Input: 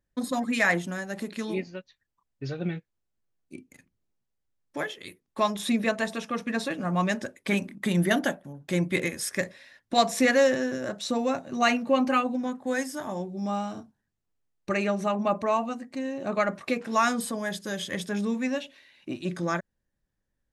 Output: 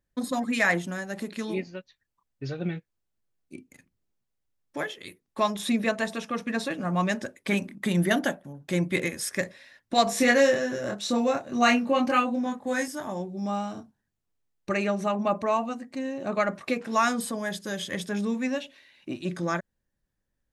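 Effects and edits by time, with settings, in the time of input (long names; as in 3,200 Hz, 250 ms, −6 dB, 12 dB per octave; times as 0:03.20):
0:10.04–0:12.88: double-tracking delay 25 ms −3 dB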